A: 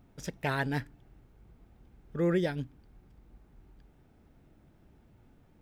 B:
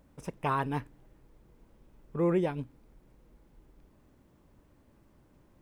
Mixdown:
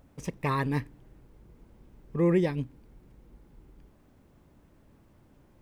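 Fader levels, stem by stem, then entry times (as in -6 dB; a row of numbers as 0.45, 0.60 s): -3.0, +1.0 dB; 0.00, 0.00 s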